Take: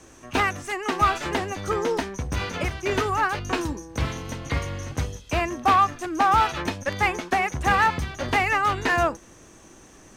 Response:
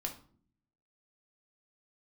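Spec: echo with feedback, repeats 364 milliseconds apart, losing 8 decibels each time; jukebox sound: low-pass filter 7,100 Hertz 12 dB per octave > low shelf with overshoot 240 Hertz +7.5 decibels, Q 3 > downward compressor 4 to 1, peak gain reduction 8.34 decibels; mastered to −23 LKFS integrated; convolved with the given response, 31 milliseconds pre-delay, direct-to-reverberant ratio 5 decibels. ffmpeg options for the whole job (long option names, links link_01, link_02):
-filter_complex "[0:a]aecho=1:1:364|728|1092|1456|1820:0.398|0.159|0.0637|0.0255|0.0102,asplit=2[link_01][link_02];[1:a]atrim=start_sample=2205,adelay=31[link_03];[link_02][link_03]afir=irnorm=-1:irlink=0,volume=-5dB[link_04];[link_01][link_04]amix=inputs=2:normalize=0,lowpass=7100,lowshelf=frequency=240:width_type=q:width=3:gain=7.5,acompressor=threshold=-19dB:ratio=4,volume=1dB"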